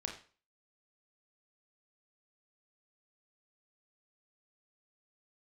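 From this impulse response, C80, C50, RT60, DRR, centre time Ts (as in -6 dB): 12.0 dB, 8.0 dB, 0.40 s, 1.5 dB, 22 ms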